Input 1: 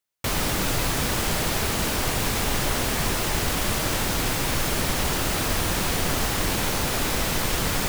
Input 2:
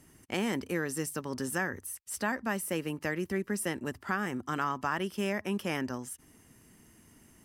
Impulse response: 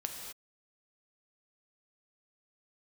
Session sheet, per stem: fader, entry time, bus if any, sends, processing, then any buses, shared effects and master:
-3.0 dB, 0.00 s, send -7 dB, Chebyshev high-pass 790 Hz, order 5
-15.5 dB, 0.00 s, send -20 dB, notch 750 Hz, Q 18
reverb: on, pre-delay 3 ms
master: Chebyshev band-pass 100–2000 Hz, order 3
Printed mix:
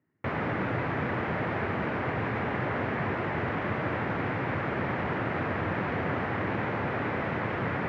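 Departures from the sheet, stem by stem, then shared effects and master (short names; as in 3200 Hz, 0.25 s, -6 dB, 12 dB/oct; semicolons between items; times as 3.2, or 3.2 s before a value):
stem 1: missing Chebyshev high-pass 790 Hz, order 5; reverb return -8.5 dB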